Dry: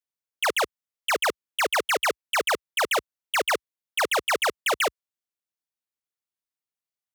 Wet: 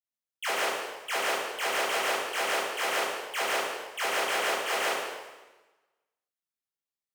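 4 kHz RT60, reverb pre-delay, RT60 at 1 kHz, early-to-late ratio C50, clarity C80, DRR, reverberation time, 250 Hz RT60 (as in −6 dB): 1.1 s, 6 ms, 1.2 s, −2.0 dB, 1.5 dB, −9.0 dB, 1.2 s, 1.2 s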